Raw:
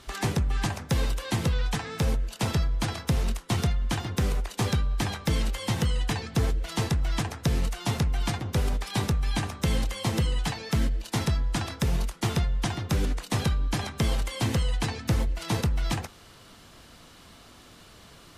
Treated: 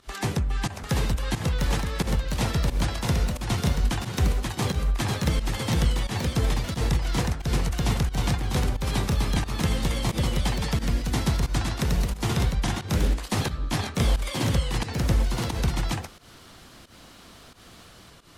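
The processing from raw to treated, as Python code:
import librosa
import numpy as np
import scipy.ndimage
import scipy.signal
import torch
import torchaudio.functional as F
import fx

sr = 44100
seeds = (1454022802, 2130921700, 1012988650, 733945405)

y = fx.echo_pitch(x, sr, ms=753, semitones=1, count=2, db_per_echo=-3.0)
y = fx.volume_shaper(y, sr, bpm=89, per_beat=1, depth_db=-15, release_ms=138.0, shape='fast start')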